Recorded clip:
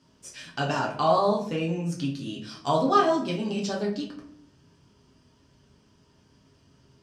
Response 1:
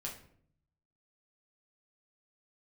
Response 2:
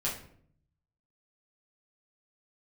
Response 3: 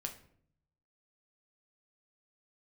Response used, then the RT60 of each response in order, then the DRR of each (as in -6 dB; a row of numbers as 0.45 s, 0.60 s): 1; 0.60 s, 0.60 s, 0.60 s; -3.0 dB, -7.0 dB, 3.0 dB